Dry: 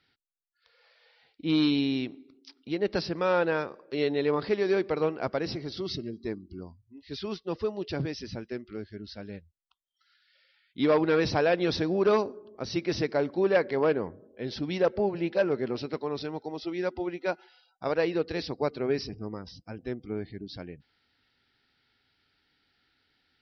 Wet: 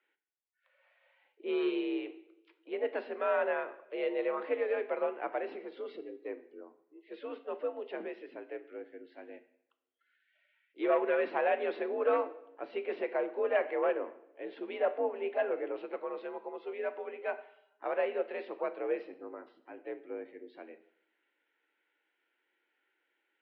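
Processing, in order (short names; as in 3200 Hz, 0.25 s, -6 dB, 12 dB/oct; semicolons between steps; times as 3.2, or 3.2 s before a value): harmoniser +4 st -16 dB; two-slope reverb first 0.64 s, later 2.1 s, from -27 dB, DRR 9 dB; mistuned SSB +60 Hz 260–2800 Hz; gain -5.5 dB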